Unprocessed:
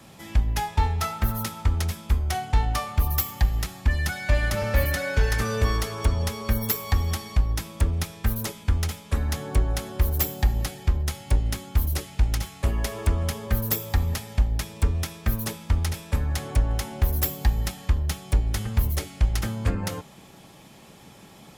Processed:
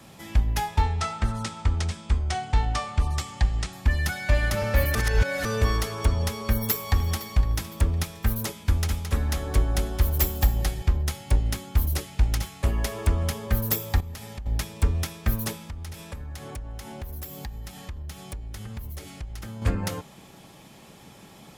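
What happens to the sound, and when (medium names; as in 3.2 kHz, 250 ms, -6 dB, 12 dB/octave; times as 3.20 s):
0.82–3.73 s: Chebyshev low-pass 8.7 kHz, order 4
4.95–5.45 s: reverse
6.34–7.34 s: echo throw 510 ms, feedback 40%, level -16.5 dB
8.46–10.82 s: delay 219 ms -7.5 dB
14.00–14.46 s: compression 8:1, threshold -33 dBFS
15.65–19.62 s: compression 4:1, threshold -35 dBFS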